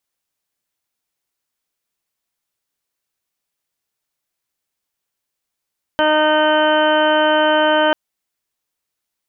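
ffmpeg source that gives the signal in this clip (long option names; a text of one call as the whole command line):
ffmpeg -f lavfi -i "aevalsrc='0.0891*sin(2*PI*307*t)+0.178*sin(2*PI*614*t)+0.126*sin(2*PI*921*t)+0.0562*sin(2*PI*1228*t)+0.106*sin(2*PI*1535*t)+0.0335*sin(2*PI*1842*t)+0.0106*sin(2*PI*2149*t)+0.015*sin(2*PI*2456*t)+0.0188*sin(2*PI*2763*t)+0.0708*sin(2*PI*3070*t)':duration=1.94:sample_rate=44100" out.wav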